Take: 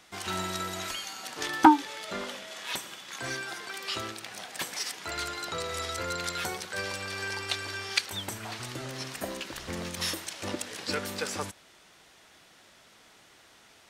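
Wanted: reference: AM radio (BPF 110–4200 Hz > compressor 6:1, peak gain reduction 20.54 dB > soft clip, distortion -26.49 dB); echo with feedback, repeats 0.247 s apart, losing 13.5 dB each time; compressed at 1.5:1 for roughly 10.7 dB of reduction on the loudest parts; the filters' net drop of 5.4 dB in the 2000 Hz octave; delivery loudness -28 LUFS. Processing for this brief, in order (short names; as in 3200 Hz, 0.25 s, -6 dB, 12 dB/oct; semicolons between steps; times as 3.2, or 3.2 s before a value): bell 2000 Hz -7 dB; compressor 1.5:1, threshold -43 dBFS; BPF 110–4200 Hz; feedback echo 0.247 s, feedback 21%, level -13.5 dB; compressor 6:1, threshold -45 dBFS; soft clip -34.5 dBFS; gain +20.5 dB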